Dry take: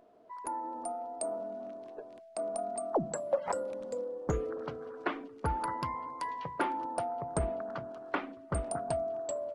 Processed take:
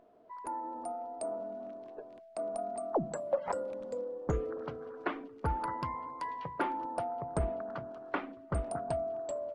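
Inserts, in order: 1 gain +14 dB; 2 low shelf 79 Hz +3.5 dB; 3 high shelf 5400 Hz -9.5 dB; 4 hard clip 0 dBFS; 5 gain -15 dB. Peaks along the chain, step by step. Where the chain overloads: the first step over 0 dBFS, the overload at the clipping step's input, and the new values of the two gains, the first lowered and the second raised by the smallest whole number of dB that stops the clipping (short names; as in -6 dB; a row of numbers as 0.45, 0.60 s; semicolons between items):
-5.5, -4.5, -5.0, -5.0, -20.0 dBFS; no overload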